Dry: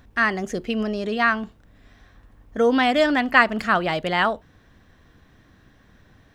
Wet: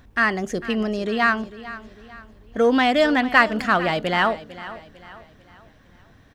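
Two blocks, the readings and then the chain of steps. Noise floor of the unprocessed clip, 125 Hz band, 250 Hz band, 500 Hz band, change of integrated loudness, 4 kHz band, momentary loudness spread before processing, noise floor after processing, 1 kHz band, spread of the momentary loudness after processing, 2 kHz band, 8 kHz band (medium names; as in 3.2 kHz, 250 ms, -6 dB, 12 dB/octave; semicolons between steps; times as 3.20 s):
-56 dBFS, +1.5 dB, +1.0 dB, +1.0 dB, +0.5 dB, +1.0 dB, 11 LU, -53 dBFS, +0.5 dB, 19 LU, +0.5 dB, no reading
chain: in parallel at -11 dB: overload inside the chain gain 16 dB; on the sum: feedback delay 449 ms, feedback 41%, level -16 dB; trim -1 dB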